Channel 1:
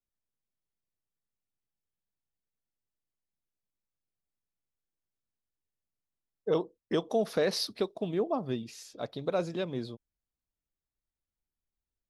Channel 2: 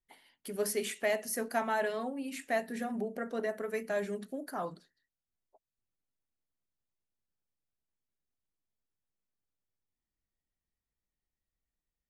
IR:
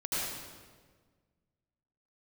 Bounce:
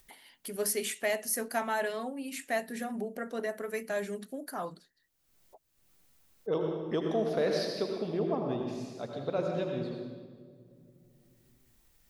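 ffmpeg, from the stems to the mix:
-filter_complex "[0:a]volume=-6dB,asplit=2[a][b];[b]volume=-4.5dB[c];[1:a]aemphasis=mode=production:type=75kf,volume=-0.5dB[d];[2:a]atrim=start_sample=2205[e];[c][e]afir=irnorm=-1:irlink=0[f];[a][d][f]amix=inputs=3:normalize=0,highshelf=f=6.1k:g=-10.5,acompressor=mode=upward:threshold=-47dB:ratio=2.5"

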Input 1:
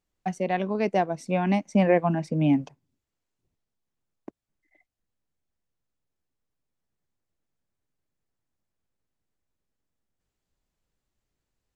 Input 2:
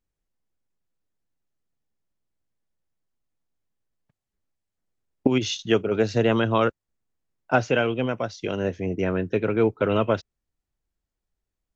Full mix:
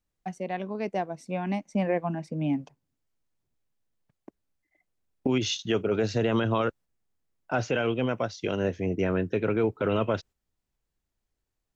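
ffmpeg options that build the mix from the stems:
-filter_complex "[0:a]volume=3dB[a];[1:a]volume=-1dB,asplit=2[b][c];[c]apad=whole_len=518332[d];[a][d]sidechaingate=range=-9dB:threshold=-43dB:ratio=16:detection=peak[e];[e][b]amix=inputs=2:normalize=0,alimiter=limit=-16dB:level=0:latency=1:release=20"

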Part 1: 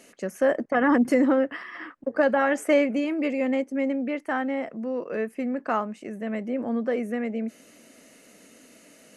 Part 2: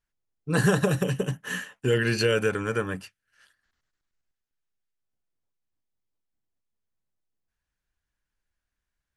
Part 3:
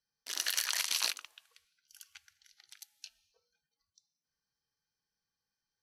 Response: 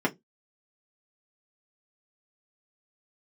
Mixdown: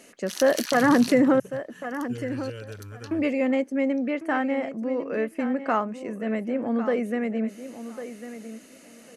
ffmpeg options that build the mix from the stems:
-filter_complex "[0:a]volume=1.5dB,asplit=3[a][b][c];[a]atrim=end=1.4,asetpts=PTS-STARTPTS,afade=t=out:st=1.396:d=0.004:c=hsin[d];[b]atrim=start=1.4:end=3.11,asetpts=PTS-STARTPTS,volume=0[e];[c]atrim=start=3.11,asetpts=PTS-STARTPTS,afade=t=in:d=0.004:c=hsin[f];[d][e][f]concat=n=3:v=0:a=1,asplit=3[g][h][i];[h]volume=-12dB[j];[1:a]equalizer=f=100:t=o:w=0.56:g=14.5,adelay=250,volume=-18dB[k];[2:a]tremolo=f=150:d=0.462,volume=3dB[l];[i]apad=whole_len=256734[m];[l][m]sidechaincompress=threshold=-24dB:ratio=4:attack=16:release=146[n];[j]aecho=0:1:1100|2200|3300:1|0.17|0.0289[o];[g][k][n][o]amix=inputs=4:normalize=0"

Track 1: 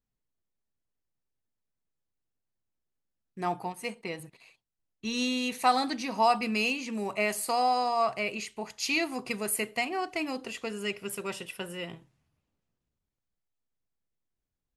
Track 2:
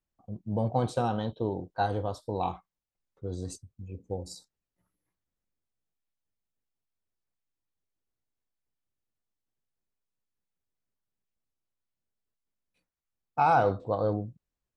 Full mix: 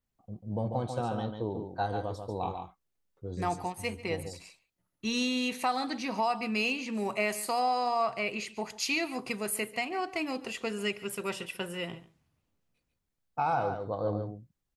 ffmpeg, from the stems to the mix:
-filter_complex "[0:a]adynamicequalizer=threshold=0.00447:dfrequency=5600:dqfactor=0.7:tfrequency=5600:tqfactor=0.7:attack=5:release=100:ratio=0.375:range=3:mode=cutabove:tftype=highshelf,volume=1.5dB,asplit=2[a][b];[b]volume=-18.5dB[c];[1:a]volume=-3.5dB,asplit=2[d][e];[e]volume=-6.5dB[f];[c][f]amix=inputs=2:normalize=0,aecho=0:1:142:1[g];[a][d][g]amix=inputs=3:normalize=0,alimiter=limit=-19.5dB:level=0:latency=1:release=494"

